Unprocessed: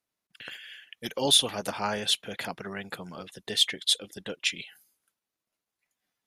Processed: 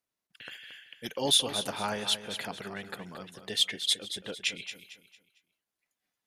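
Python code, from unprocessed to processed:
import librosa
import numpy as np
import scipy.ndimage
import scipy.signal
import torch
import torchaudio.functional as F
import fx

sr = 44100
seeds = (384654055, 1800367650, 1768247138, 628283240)

y = fx.echo_feedback(x, sr, ms=226, feedback_pct=35, wet_db=-10.5)
y = y * librosa.db_to_amplitude(-3.0)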